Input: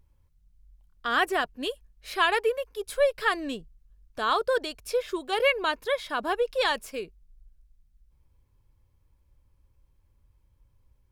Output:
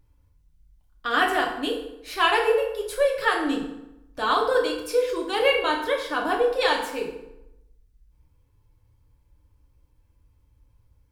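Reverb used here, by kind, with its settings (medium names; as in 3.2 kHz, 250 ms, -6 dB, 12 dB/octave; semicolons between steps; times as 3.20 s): FDN reverb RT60 0.88 s, low-frequency decay 1.1×, high-frequency decay 0.7×, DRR -1 dB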